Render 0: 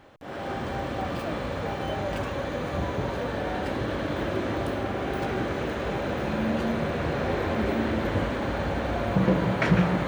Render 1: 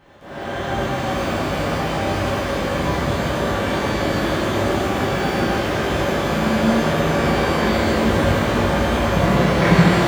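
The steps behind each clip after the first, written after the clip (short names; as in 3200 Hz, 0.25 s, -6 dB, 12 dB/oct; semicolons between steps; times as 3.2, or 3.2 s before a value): shimmer reverb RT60 2.6 s, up +12 st, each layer -8 dB, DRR -9 dB; gain -1.5 dB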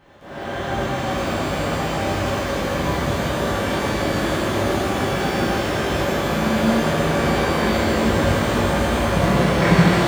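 thin delay 0.157 s, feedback 83%, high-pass 4900 Hz, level -5 dB; gain -1 dB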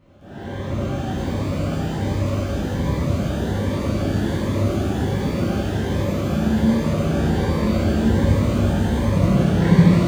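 low shelf 490 Hz +10.5 dB; on a send at -11 dB: reverb RT60 1.0 s, pre-delay 3 ms; on the sum: cascading phaser rising 1.3 Hz; gain -7.5 dB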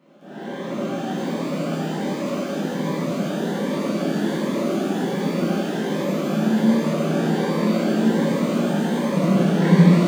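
elliptic high-pass 170 Hz, stop band 50 dB; gain +1.5 dB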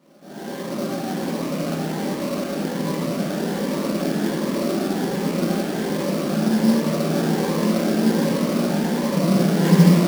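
sample-rate reducer 5100 Hz, jitter 20%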